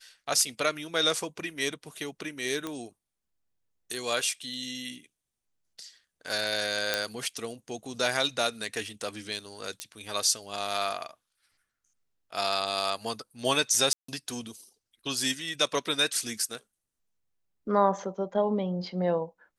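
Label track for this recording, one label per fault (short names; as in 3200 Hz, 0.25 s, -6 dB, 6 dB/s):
2.670000	2.670000	pop -19 dBFS
6.940000	6.940000	pop -9 dBFS
9.800000	9.800000	pop -17 dBFS
13.930000	14.080000	gap 0.154 s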